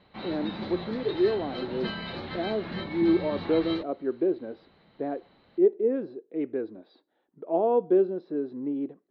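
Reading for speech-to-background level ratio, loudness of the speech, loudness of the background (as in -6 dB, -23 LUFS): 8.0 dB, -28.5 LUFS, -36.5 LUFS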